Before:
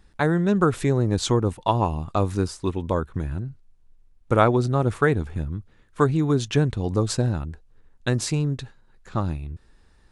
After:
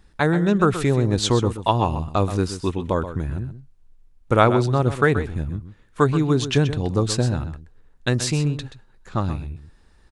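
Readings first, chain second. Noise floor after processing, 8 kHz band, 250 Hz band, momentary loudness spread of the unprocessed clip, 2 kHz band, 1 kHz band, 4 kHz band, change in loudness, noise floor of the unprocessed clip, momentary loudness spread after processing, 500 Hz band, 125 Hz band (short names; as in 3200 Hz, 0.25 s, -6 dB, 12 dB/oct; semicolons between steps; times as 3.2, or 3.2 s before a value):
-55 dBFS, +3.0 dB, +2.0 dB, 12 LU, +3.5 dB, +2.5 dB, +5.0 dB, +2.0 dB, -56 dBFS, 13 LU, +2.0 dB, +2.0 dB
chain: dynamic EQ 3200 Hz, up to +4 dB, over -42 dBFS, Q 0.81; on a send: echo 0.128 s -11.5 dB; on the sum: gain +1.5 dB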